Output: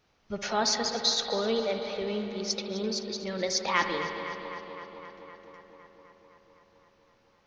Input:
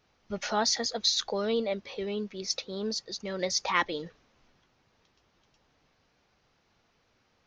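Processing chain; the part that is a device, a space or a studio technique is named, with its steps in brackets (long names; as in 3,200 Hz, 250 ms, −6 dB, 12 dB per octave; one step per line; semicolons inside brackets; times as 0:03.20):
dub delay into a spring reverb (feedback echo with a low-pass in the loop 256 ms, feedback 76%, low-pass 4,800 Hz, level −12 dB; spring reverb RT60 3.1 s, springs 58 ms, chirp 20 ms, DRR 5.5 dB)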